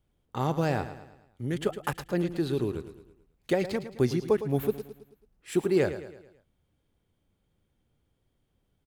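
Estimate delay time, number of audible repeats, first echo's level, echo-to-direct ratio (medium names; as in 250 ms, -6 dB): 109 ms, 4, -12.0 dB, -11.0 dB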